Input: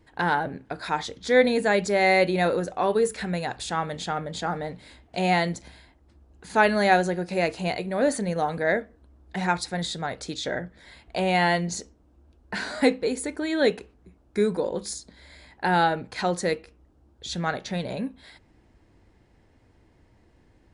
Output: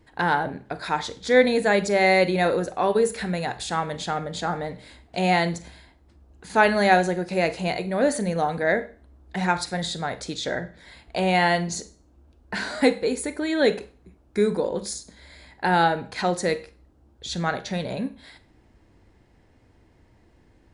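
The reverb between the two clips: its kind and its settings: Schroeder reverb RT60 0.39 s, combs from 32 ms, DRR 13.5 dB; gain +1.5 dB

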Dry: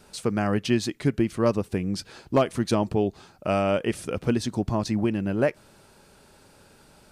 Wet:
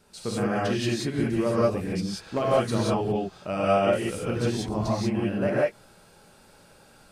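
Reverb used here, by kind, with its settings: non-linear reverb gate 0.21 s rising, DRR -7.5 dB; gain -7.5 dB

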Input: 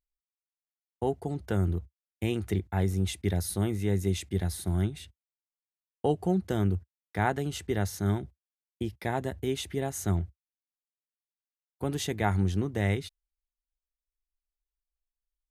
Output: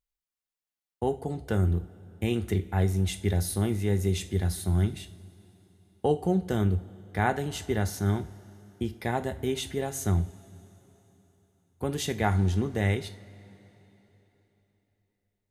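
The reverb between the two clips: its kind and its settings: two-slope reverb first 0.33 s, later 3.7 s, from -21 dB, DRR 8 dB; gain +1 dB

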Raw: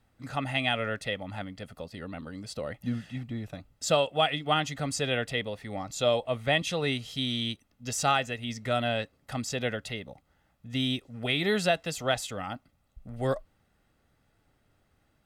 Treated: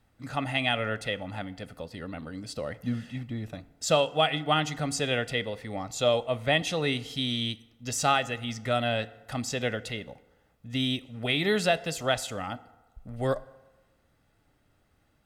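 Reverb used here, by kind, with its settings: FDN reverb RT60 1.2 s, low-frequency decay 0.8×, high-frequency decay 0.55×, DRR 15.5 dB; gain +1 dB

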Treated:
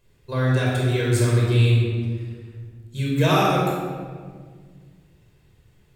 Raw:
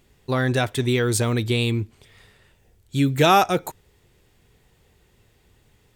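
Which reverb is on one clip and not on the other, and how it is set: shoebox room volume 2100 m³, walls mixed, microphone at 5.2 m; gain -10 dB

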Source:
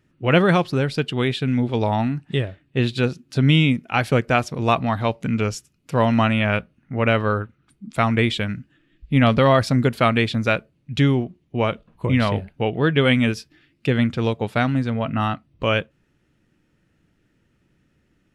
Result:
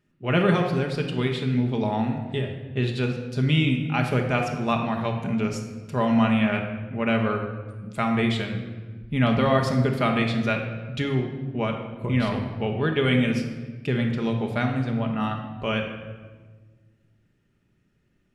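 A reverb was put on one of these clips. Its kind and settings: shoebox room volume 1200 m³, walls mixed, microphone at 1.3 m; gain -7 dB

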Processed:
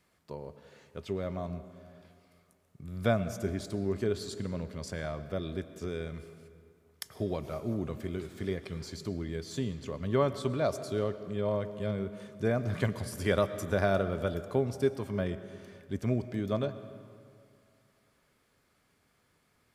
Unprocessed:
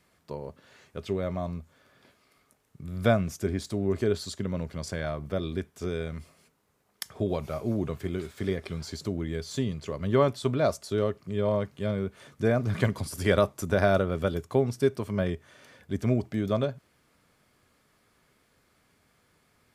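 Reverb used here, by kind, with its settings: digital reverb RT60 2.3 s, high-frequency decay 0.65×, pre-delay 70 ms, DRR 12.5 dB; gain -4.5 dB

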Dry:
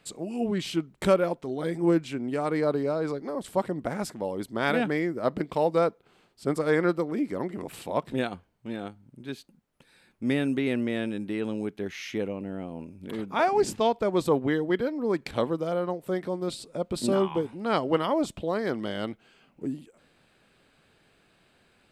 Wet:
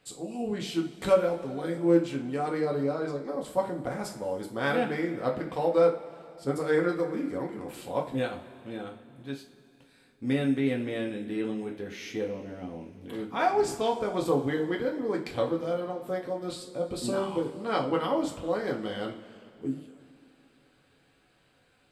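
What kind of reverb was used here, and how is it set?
two-slope reverb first 0.32 s, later 3.1 s, from -20 dB, DRR -0.5 dB; gain -5.5 dB

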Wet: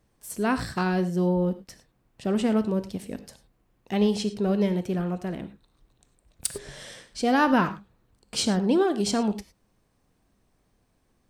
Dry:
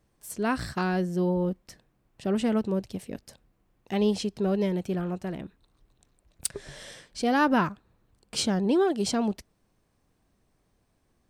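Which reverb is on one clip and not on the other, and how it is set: non-linear reverb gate 0.13 s flat, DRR 11 dB; gain +1.5 dB

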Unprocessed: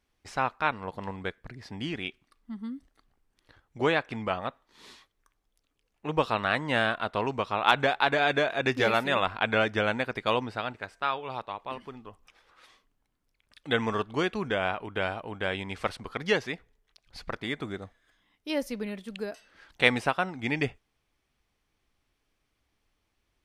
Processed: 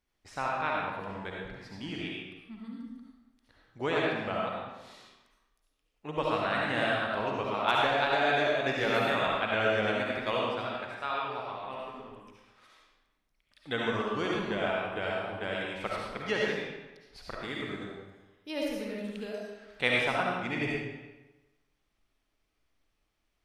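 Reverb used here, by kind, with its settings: digital reverb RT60 1.1 s, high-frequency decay 0.85×, pre-delay 30 ms, DRR -3.5 dB; gain -7 dB

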